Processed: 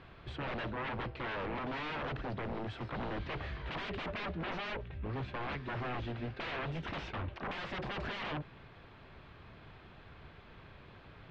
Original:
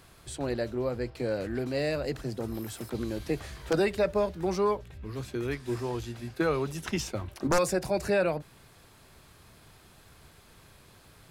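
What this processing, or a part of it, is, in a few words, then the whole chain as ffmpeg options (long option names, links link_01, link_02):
synthesiser wavefolder: -af "aeval=exprs='0.0178*(abs(mod(val(0)/0.0178+3,4)-2)-1)':channel_layout=same,lowpass=frequency=3200:width=0.5412,lowpass=frequency=3200:width=1.3066,volume=2dB"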